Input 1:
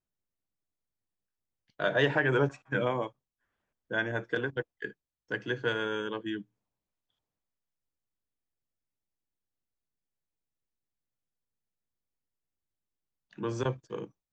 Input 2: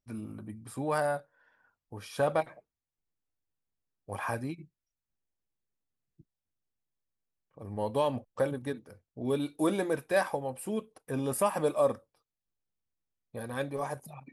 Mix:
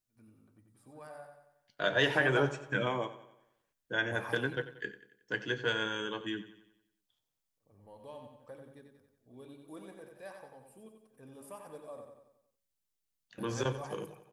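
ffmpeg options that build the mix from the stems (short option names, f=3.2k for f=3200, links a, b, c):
-filter_complex "[0:a]highshelf=f=2.8k:g=10.5,flanger=delay=6.8:depth=3.6:regen=-72:speed=0.25:shape=sinusoidal,volume=1dB,asplit=3[a][b][c];[b]volume=-14.5dB[d];[1:a]bandreject=f=69.7:t=h:w=4,bandreject=f=139.4:t=h:w=4,bandreject=f=209.1:t=h:w=4,bandreject=f=278.8:t=h:w=4,bandreject=f=348.5:t=h:w=4,bandreject=f=418.2:t=h:w=4,bandreject=f=487.9:t=h:w=4,bandreject=f=557.6:t=h:w=4,bandreject=f=627.3:t=h:w=4,bandreject=f=697:t=h:w=4,bandreject=f=766.7:t=h:w=4,bandreject=f=836.4:t=h:w=4,bandreject=f=906.1:t=h:w=4,bandreject=f=975.8:t=h:w=4,bandreject=f=1.0455k:t=h:w=4,bandreject=f=1.1152k:t=h:w=4,bandreject=f=1.1849k:t=h:w=4,bandreject=f=1.2546k:t=h:w=4,bandreject=f=1.3243k:t=h:w=4,bandreject=f=1.394k:t=h:w=4,bandreject=f=1.4637k:t=h:w=4,bandreject=f=1.5334k:t=h:w=4,bandreject=f=1.6031k:t=h:w=4,bandreject=f=1.6728k:t=h:w=4,bandreject=f=1.7425k:t=h:w=4,bandreject=f=1.8122k:t=h:w=4,bandreject=f=1.8819k:t=h:w=4,bandreject=f=1.9516k:t=h:w=4,bandreject=f=2.0213k:t=h:w=4,volume=-9dB,asplit=2[e][f];[f]volume=-11.5dB[g];[c]apad=whole_len=631872[h];[e][h]sidechaingate=range=-33dB:threshold=-56dB:ratio=16:detection=peak[i];[d][g]amix=inputs=2:normalize=0,aecho=0:1:91|182|273|364|455|546|637:1|0.49|0.24|0.118|0.0576|0.0282|0.0138[j];[a][i][j]amix=inputs=3:normalize=0"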